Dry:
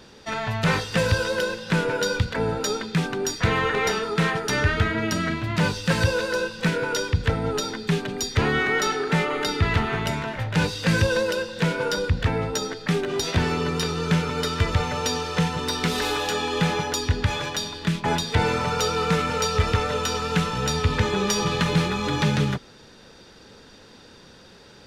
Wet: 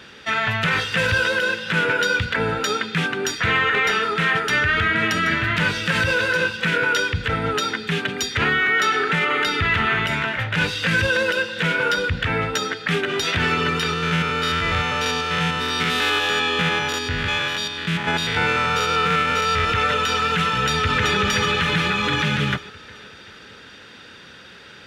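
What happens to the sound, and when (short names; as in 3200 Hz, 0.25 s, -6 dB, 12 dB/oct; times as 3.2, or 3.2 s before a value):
4.15–6.57 echo 0.779 s -11.5 dB
13.93–19.7 stepped spectrum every 0.1 s
20.45–21.17 echo throw 0.38 s, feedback 50%, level -3 dB
whole clip: HPF 58 Hz; band shelf 2100 Hz +10 dB; limiter -11.5 dBFS; gain +1 dB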